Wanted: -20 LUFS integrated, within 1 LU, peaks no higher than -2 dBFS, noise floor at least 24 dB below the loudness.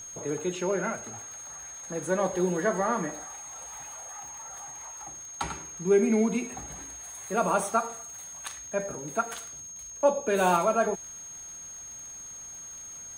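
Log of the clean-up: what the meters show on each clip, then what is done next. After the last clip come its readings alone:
ticks 54/s; steady tone 6500 Hz; tone level -40 dBFS; loudness -30.5 LUFS; peak -10.0 dBFS; loudness target -20.0 LUFS
-> de-click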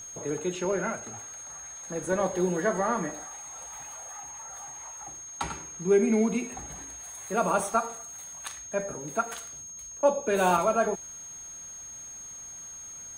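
ticks 0.38/s; steady tone 6500 Hz; tone level -40 dBFS
-> notch 6500 Hz, Q 30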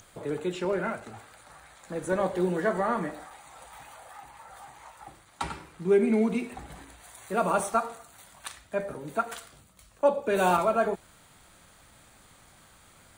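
steady tone none; loudness -28.5 LUFS; peak -9.5 dBFS; loudness target -20.0 LUFS
-> gain +8.5 dB; limiter -2 dBFS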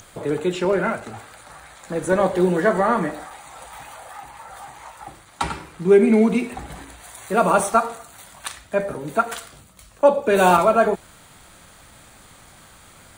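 loudness -20.0 LUFS; peak -2.0 dBFS; noise floor -49 dBFS

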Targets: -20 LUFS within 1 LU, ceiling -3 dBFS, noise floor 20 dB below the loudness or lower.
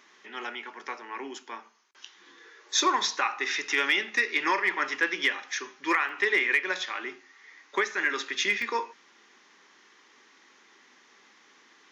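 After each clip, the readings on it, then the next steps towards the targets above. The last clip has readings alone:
dropouts 2; longest dropout 2.4 ms; loudness -27.0 LUFS; peak -12.5 dBFS; loudness target -20.0 LUFS
-> interpolate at 6.09/8.62, 2.4 ms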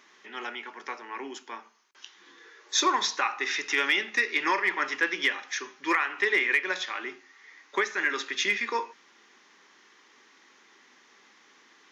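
dropouts 0; loudness -27.0 LUFS; peak -12.5 dBFS; loudness target -20.0 LUFS
-> gain +7 dB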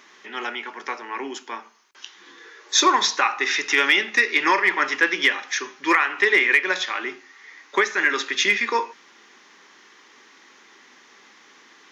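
loudness -20.0 LUFS; peak -5.5 dBFS; noise floor -52 dBFS

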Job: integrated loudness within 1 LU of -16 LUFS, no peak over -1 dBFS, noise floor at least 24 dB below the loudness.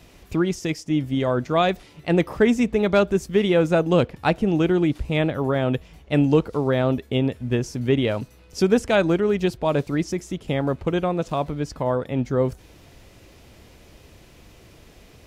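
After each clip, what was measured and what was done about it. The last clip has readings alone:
loudness -22.5 LUFS; peak -5.5 dBFS; loudness target -16.0 LUFS
-> gain +6.5 dB; limiter -1 dBFS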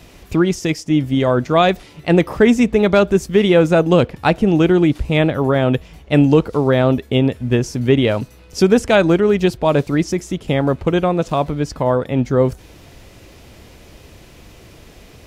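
loudness -16.0 LUFS; peak -1.0 dBFS; noise floor -44 dBFS

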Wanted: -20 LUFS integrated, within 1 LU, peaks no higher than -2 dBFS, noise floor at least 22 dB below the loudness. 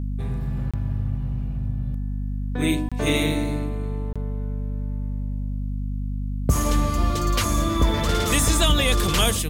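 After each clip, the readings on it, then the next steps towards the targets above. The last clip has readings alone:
dropouts 3; longest dropout 26 ms; hum 50 Hz; harmonics up to 250 Hz; hum level -24 dBFS; loudness -24.5 LUFS; peak -8.5 dBFS; loudness target -20.0 LUFS
-> interpolate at 0.71/2.89/4.13, 26 ms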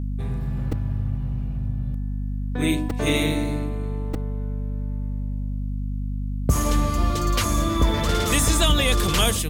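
dropouts 0; hum 50 Hz; harmonics up to 250 Hz; hum level -24 dBFS
-> de-hum 50 Hz, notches 5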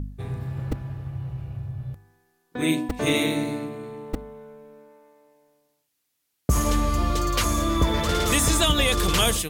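hum none; loudness -24.5 LUFS; peak -9.0 dBFS; loudness target -20.0 LUFS
-> gain +4.5 dB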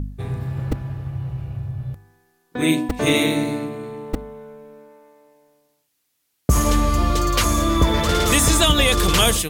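loudness -20.0 LUFS; peak -4.5 dBFS; noise floor -71 dBFS

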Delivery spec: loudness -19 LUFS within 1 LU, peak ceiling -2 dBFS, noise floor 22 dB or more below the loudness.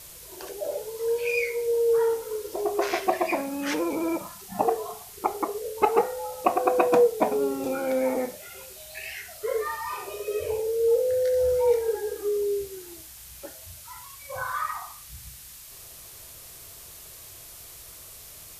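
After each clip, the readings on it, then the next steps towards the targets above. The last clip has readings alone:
noise floor -45 dBFS; noise floor target -49 dBFS; loudness -26.5 LUFS; peak -4.5 dBFS; loudness target -19.0 LUFS
-> denoiser 6 dB, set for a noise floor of -45 dBFS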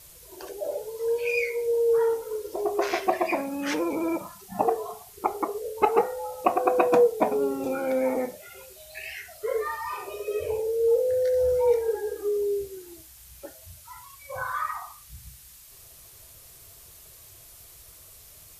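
noise floor -50 dBFS; loudness -26.5 LUFS; peak -4.5 dBFS; loudness target -19.0 LUFS
-> gain +7.5 dB; limiter -2 dBFS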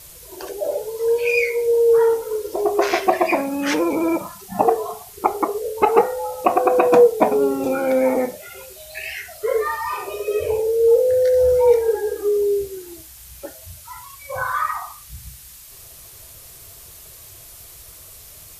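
loudness -19.0 LUFS; peak -2.0 dBFS; noise floor -42 dBFS

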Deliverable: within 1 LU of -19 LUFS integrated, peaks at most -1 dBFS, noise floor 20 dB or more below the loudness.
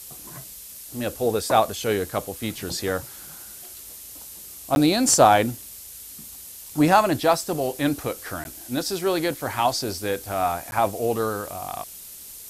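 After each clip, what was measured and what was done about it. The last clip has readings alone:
dropouts 3; longest dropout 11 ms; noise floor -41 dBFS; noise floor target -43 dBFS; loudness -23.0 LUFS; peak -2.5 dBFS; loudness target -19.0 LUFS
-> interpolate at 4.75/8.44/10.71, 11 ms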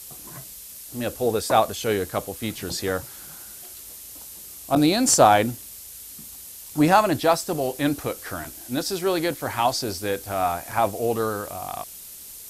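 dropouts 0; noise floor -41 dBFS; noise floor target -43 dBFS
-> denoiser 6 dB, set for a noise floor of -41 dBFS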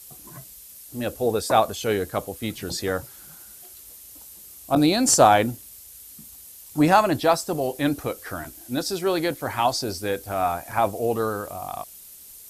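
noise floor -45 dBFS; loudness -23.0 LUFS; peak -2.5 dBFS; loudness target -19.0 LUFS
-> gain +4 dB; limiter -1 dBFS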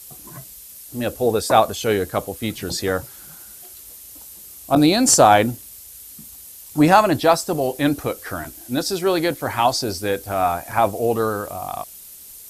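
loudness -19.5 LUFS; peak -1.0 dBFS; noise floor -41 dBFS

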